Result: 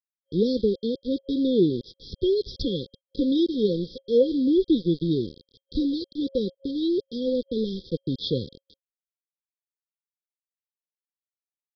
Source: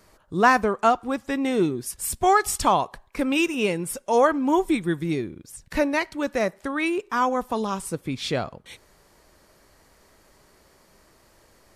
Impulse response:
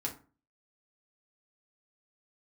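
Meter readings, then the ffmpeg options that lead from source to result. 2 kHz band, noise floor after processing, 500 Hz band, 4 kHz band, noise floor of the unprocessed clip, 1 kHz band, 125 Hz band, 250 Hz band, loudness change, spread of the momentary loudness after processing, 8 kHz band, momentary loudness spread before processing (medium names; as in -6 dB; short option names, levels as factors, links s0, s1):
under -40 dB, under -85 dBFS, 0.0 dB, 0.0 dB, -58 dBFS, under -40 dB, +1.5 dB, +2.0 dB, -2.0 dB, 9 LU, under -25 dB, 10 LU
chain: -af "aeval=exprs='val(0)+0.00891*sin(2*PI*2300*n/s)':c=same,aeval=exprs='val(0)*gte(abs(val(0)),0.0266)':c=same,afftfilt=real='re*(1-between(b*sr/4096,540,3200))':imag='im*(1-between(b*sr/4096,540,3200))':win_size=4096:overlap=0.75,aresample=11025,aresample=44100,volume=1.26"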